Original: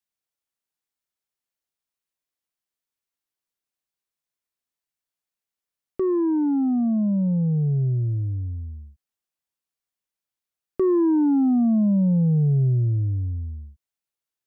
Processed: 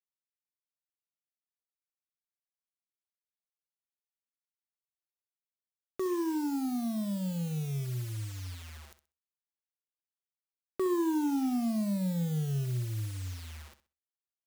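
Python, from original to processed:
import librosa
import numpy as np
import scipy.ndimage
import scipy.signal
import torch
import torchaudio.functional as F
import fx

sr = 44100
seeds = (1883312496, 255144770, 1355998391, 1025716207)

y = fx.quant_dither(x, sr, seeds[0], bits=8, dither='none')
y = fx.tilt_shelf(y, sr, db=-8.5, hz=720.0)
y = fx.room_flutter(y, sr, wall_m=11.0, rt60_s=0.3)
y = y * 10.0 ** (-5.0 / 20.0)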